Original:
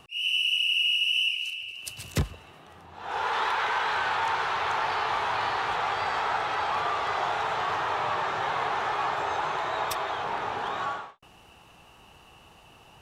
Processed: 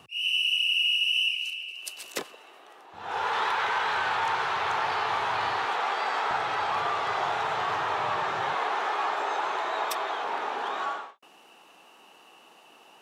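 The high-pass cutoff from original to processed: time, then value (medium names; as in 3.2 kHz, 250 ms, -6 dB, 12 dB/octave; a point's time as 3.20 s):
high-pass 24 dB/octave
86 Hz
from 1.31 s 340 Hz
from 2.93 s 84 Hz
from 5.65 s 230 Hz
from 6.31 s 89 Hz
from 8.55 s 250 Hz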